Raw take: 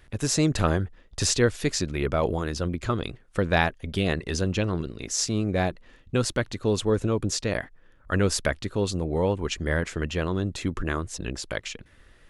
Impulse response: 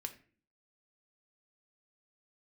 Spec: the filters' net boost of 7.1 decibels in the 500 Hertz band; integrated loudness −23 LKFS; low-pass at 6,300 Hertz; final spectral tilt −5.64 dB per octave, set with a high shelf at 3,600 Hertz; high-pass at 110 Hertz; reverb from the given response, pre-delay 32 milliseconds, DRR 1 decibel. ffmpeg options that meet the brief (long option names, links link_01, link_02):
-filter_complex "[0:a]highpass=110,lowpass=6300,equalizer=frequency=500:width_type=o:gain=8.5,highshelf=frequency=3600:gain=-6.5,asplit=2[link_01][link_02];[1:a]atrim=start_sample=2205,adelay=32[link_03];[link_02][link_03]afir=irnorm=-1:irlink=0,volume=1.5dB[link_04];[link_01][link_04]amix=inputs=2:normalize=0,volume=-2dB"